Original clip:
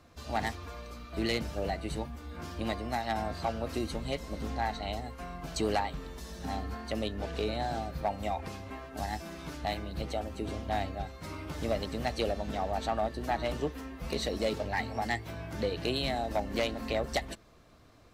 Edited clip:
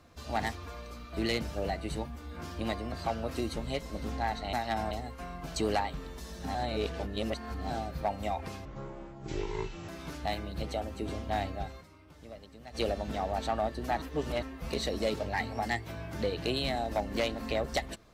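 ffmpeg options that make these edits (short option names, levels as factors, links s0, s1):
-filter_complex "[0:a]asplit=12[s0][s1][s2][s3][s4][s5][s6][s7][s8][s9][s10][s11];[s0]atrim=end=2.922[s12];[s1]atrim=start=3.298:end=4.912[s13];[s2]atrim=start=2.918:end=3.302[s14];[s3]atrim=start=4.908:end=6.552[s15];[s4]atrim=start=6.548:end=7.702,asetpts=PTS-STARTPTS,areverse[s16];[s5]atrim=start=7.698:end=8.654[s17];[s6]atrim=start=8.65:end=9.28,asetpts=PTS-STARTPTS,asetrate=22491,aresample=44100,atrim=end_sample=54476,asetpts=PTS-STARTPTS[s18];[s7]atrim=start=9.276:end=11.34,asetpts=PTS-STARTPTS,afade=t=out:st=1.924:d=0.14:c=exp:silence=0.158489[s19];[s8]atrim=start=11.34:end=12.01,asetpts=PTS-STARTPTS,volume=0.158[s20];[s9]atrim=start=12.01:end=13.412,asetpts=PTS-STARTPTS,afade=t=in:d=0.14:c=exp:silence=0.158489[s21];[s10]atrim=start=13.408:end=13.822,asetpts=PTS-STARTPTS,areverse[s22];[s11]atrim=start=13.818[s23];[s12][s13]acrossfade=d=0.004:c1=hsin:c2=hsin[s24];[s24][s14]acrossfade=d=0.004:c1=hsin:c2=hsin[s25];[s25][s15]acrossfade=d=0.004:c1=hsin:c2=hsin[s26];[s26][s16]acrossfade=d=0.004:c1=hsin:c2=hsin[s27];[s27][s17]acrossfade=d=0.004:c1=hsin:c2=hsin[s28];[s28][s18]acrossfade=d=0.004:c1=hsin:c2=hsin[s29];[s19][s20][s21]concat=n=3:v=0:a=1[s30];[s29][s30]acrossfade=d=0.004:c1=hsin:c2=hsin[s31];[s31][s22]acrossfade=d=0.004:c1=hsin:c2=hsin[s32];[s32][s23]acrossfade=d=0.004:c1=hsin:c2=hsin"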